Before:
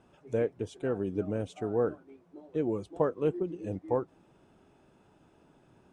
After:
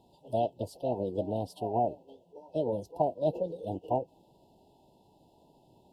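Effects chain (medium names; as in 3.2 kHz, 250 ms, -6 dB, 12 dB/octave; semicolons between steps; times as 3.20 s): formant shift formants +6 st; FFT band-reject 1–2.6 kHz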